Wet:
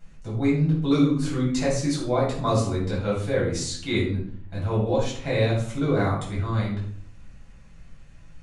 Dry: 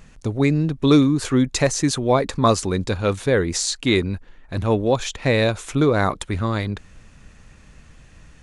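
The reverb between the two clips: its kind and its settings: shoebox room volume 700 m³, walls furnished, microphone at 7.5 m; gain -16 dB

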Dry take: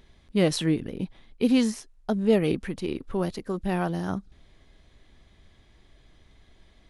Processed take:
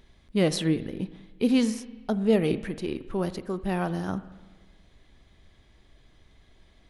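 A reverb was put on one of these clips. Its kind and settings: spring tank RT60 1.3 s, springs 37/41/50 ms, chirp 50 ms, DRR 13.5 dB; gain -1 dB

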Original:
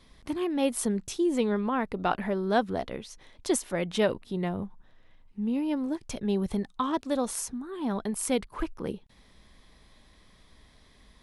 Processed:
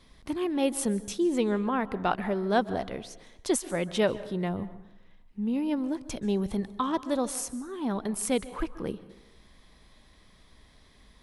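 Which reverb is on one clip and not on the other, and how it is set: plate-style reverb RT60 0.87 s, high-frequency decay 0.65×, pre-delay 0.12 s, DRR 16 dB

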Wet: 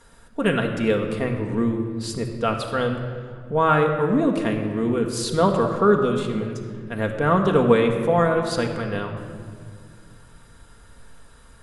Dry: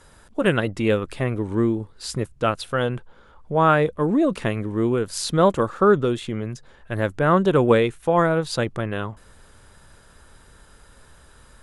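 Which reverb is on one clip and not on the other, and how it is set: shoebox room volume 3700 m³, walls mixed, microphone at 1.7 m; gain -2.5 dB

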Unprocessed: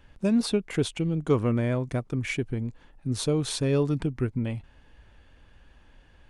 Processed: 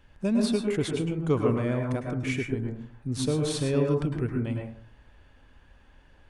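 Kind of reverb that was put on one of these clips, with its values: plate-style reverb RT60 0.51 s, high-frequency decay 0.3×, pre-delay 95 ms, DRR 1 dB; gain -2.5 dB

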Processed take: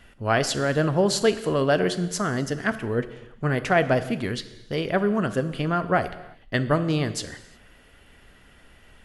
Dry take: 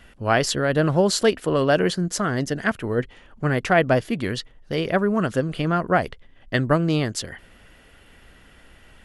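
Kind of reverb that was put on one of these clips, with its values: non-linear reverb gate 0.39 s falling, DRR 11 dB; gain -2.5 dB

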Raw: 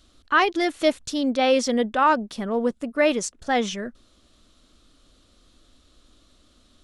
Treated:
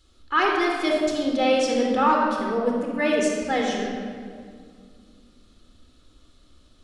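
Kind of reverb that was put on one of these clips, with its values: shoebox room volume 3900 m³, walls mixed, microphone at 4.1 m; gain -6 dB

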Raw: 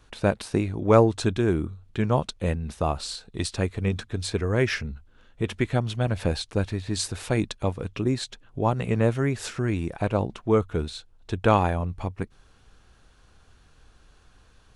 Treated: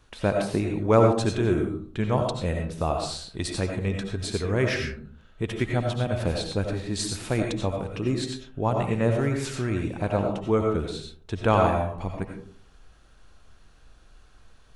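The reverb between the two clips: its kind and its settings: digital reverb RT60 0.5 s, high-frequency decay 0.4×, pre-delay 50 ms, DRR 2 dB; gain -2 dB

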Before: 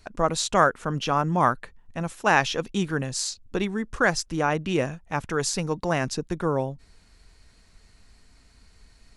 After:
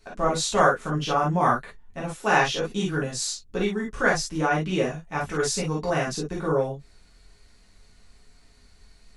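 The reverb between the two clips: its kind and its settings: non-linear reverb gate 80 ms flat, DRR -5 dB; gain -6 dB

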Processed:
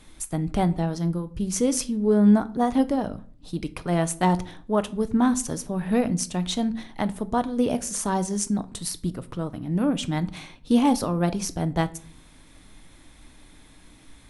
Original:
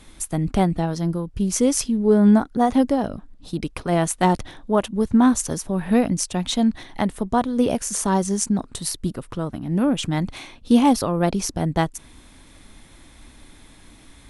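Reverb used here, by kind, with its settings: shoebox room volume 390 m³, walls furnished, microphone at 0.49 m; gain -4 dB

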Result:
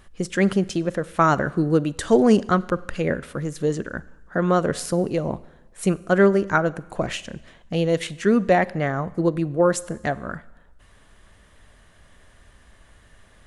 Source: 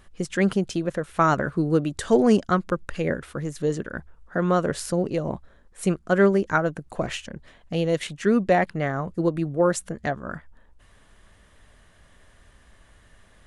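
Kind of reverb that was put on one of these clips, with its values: Schroeder reverb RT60 1 s, combs from 32 ms, DRR 19 dB; gain +2 dB

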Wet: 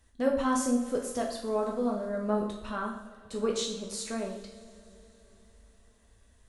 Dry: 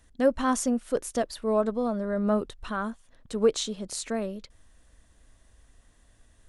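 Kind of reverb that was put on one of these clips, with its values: two-slope reverb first 0.6 s, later 4.3 s, from -21 dB, DRR -1 dB; gain -6 dB

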